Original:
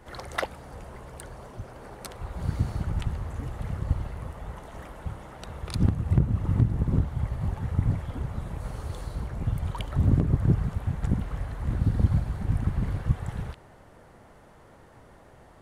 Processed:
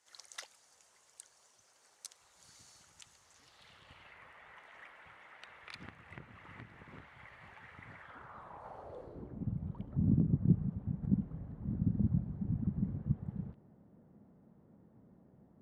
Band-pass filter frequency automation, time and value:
band-pass filter, Q 2.4
3.21 s 6.5 kHz
4.19 s 2.1 kHz
7.83 s 2.1 kHz
8.74 s 780 Hz
9.50 s 200 Hz

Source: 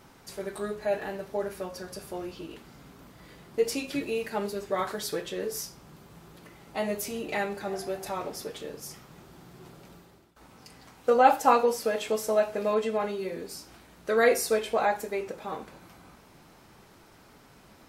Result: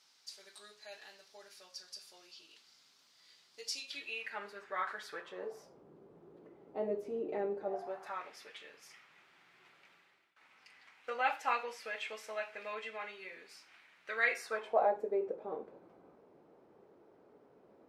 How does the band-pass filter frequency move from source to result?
band-pass filter, Q 2.2
3.79 s 4.8 kHz
4.45 s 1.6 kHz
5.11 s 1.6 kHz
5.83 s 410 Hz
7.56 s 410 Hz
8.30 s 2.2 kHz
14.35 s 2.2 kHz
14.94 s 450 Hz

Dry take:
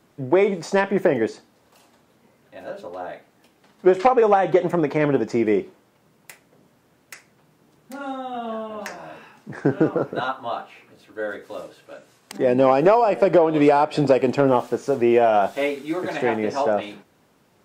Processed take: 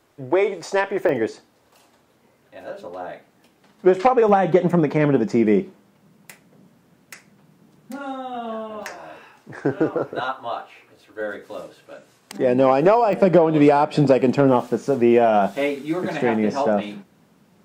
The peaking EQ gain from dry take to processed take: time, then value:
peaking EQ 190 Hz 0.71 oct
-13.5 dB
from 1.09 s -3.5 dB
from 2.81 s +3 dB
from 4.29 s +10 dB
from 7.98 s -0.5 dB
from 8.83 s -9 dB
from 11.21 s +2.5 dB
from 13.13 s +10.5 dB

